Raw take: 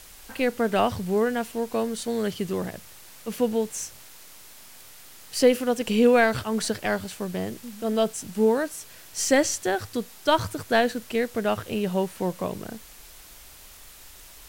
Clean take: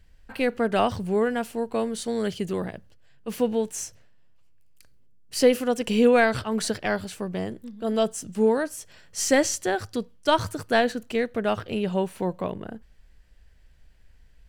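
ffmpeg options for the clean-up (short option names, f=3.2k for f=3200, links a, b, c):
-af "afwtdn=0.0045"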